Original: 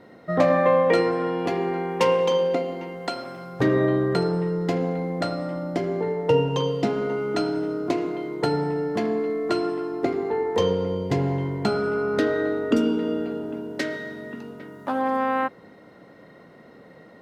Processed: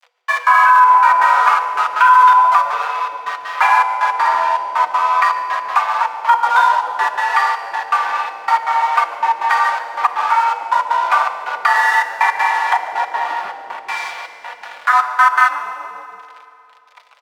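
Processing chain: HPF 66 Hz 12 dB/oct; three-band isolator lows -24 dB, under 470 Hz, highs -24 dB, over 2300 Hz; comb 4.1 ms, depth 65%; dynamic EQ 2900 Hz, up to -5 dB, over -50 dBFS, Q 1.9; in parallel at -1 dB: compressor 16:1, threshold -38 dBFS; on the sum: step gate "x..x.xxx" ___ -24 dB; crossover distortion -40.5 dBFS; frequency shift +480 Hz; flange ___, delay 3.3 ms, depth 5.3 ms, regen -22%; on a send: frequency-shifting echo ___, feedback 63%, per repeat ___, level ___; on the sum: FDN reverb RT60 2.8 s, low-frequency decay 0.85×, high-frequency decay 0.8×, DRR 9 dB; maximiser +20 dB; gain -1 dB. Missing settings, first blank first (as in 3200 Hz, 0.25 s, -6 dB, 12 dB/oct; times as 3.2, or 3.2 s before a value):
161 bpm, 1.3 Hz, 0.143 s, -110 Hz, -20 dB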